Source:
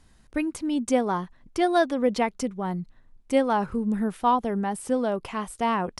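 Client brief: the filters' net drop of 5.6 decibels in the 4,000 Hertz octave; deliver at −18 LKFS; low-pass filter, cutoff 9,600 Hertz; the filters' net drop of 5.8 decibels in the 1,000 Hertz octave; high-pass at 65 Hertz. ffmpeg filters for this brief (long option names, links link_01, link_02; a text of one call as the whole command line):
ffmpeg -i in.wav -af "highpass=65,lowpass=9600,equalizer=frequency=1000:width_type=o:gain=-7.5,equalizer=frequency=4000:width_type=o:gain=-7,volume=10dB" out.wav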